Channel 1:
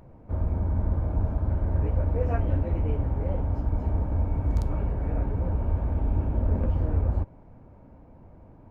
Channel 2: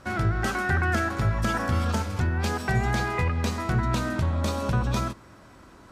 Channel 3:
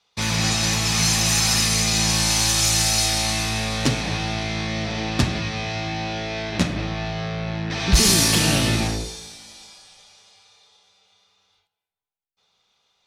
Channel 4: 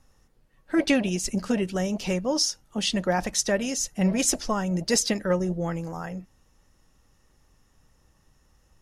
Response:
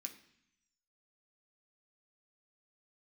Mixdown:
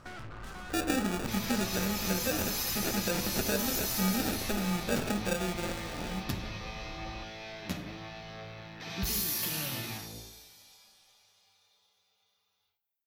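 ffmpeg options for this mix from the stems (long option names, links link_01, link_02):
-filter_complex "[0:a]lowpass=frequency=1200:width_type=q:width=13,aecho=1:1:5.7:0.93,volume=-15dB[link_01];[1:a]aeval=exprs='(tanh(63.1*val(0)+0.75)-tanh(0.75))/63.1':channel_layout=same,volume=-1.5dB[link_02];[2:a]aexciter=amount=9.3:drive=7.6:freq=12000,adelay=1100,volume=-9.5dB[link_03];[3:a]acrusher=samples=42:mix=1:aa=0.000001,volume=-1dB,asplit=2[link_04][link_05];[link_05]volume=-7dB[link_06];[link_01][link_02]amix=inputs=2:normalize=0,acompressor=threshold=-41dB:ratio=3,volume=0dB[link_07];[link_03][link_04]amix=inputs=2:normalize=0,flanger=delay=8.6:depth=2:regen=75:speed=0.73:shape=triangular,acompressor=threshold=-28dB:ratio=6,volume=0dB[link_08];[4:a]atrim=start_sample=2205[link_09];[link_06][link_09]afir=irnorm=-1:irlink=0[link_10];[link_07][link_08][link_10]amix=inputs=3:normalize=0,bandreject=frequency=55.23:width_type=h:width=4,bandreject=frequency=110.46:width_type=h:width=4,bandreject=frequency=165.69:width_type=h:width=4,bandreject=frequency=220.92:width_type=h:width=4,bandreject=frequency=276.15:width_type=h:width=4,bandreject=frequency=331.38:width_type=h:width=4,bandreject=frequency=386.61:width_type=h:width=4,bandreject=frequency=441.84:width_type=h:width=4,bandreject=frequency=497.07:width_type=h:width=4,bandreject=frequency=552.3:width_type=h:width=4,bandreject=frequency=607.53:width_type=h:width=4,bandreject=frequency=662.76:width_type=h:width=4,bandreject=frequency=717.99:width_type=h:width=4,bandreject=frequency=773.22:width_type=h:width=4"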